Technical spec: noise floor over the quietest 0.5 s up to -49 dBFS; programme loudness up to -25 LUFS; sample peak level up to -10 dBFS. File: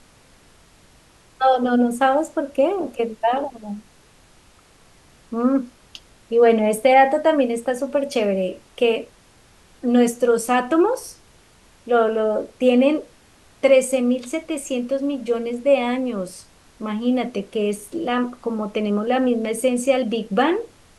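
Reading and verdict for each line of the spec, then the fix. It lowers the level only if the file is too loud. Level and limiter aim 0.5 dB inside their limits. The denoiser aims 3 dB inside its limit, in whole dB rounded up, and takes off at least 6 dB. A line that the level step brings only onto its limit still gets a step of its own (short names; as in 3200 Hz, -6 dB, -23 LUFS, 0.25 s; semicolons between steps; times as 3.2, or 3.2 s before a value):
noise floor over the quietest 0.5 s -52 dBFS: OK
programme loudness -20.5 LUFS: fail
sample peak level -4.0 dBFS: fail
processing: gain -5 dB; limiter -10.5 dBFS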